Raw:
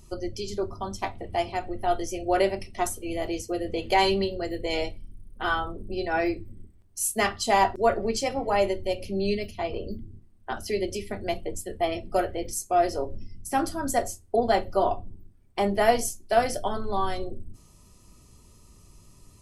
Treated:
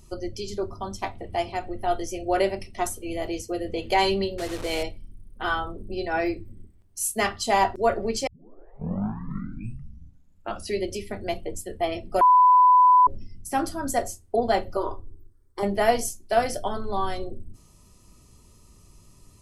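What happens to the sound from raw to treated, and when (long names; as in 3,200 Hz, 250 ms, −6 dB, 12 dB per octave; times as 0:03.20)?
0:04.38–0:04.83: linear delta modulator 64 kbit/s, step −30 dBFS
0:08.27: tape start 2.52 s
0:12.21–0:13.07: beep over 999 Hz −12 dBFS
0:14.77–0:15.63: phaser with its sweep stopped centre 700 Hz, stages 6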